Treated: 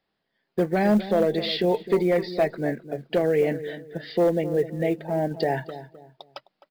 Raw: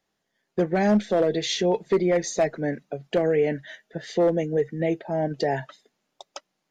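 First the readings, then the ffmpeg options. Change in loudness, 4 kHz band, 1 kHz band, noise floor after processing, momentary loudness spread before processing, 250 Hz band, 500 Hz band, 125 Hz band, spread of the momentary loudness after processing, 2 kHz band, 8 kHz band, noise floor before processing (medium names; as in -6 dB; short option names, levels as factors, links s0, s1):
0.0 dB, 0.0 dB, 0.0 dB, -79 dBFS, 13 LU, +0.5 dB, 0.0 dB, +0.5 dB, 12 LU, 0.0 dB, under -10 dB, -79 dBFS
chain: -filter_complex "[0:a]asplit=2[s0][s1];[s1]adelay=259,lowpass=f=1000:p=1,volume=0.251,asplit=2[s2][s3];[s3]adelay=259,lowpass=f=1000:p=1,volume=0.34,asplit=2[s4][s5];[s5]adelay=259,lowpass=f=1000:p=1,volume=0.34[s6];[s0][s2][s4][s6]amix=inputs=4:normalize=0,aresample=11025,aresample=44100,acrusher=bits=8:mode=log:mix=0:aa=0.000001"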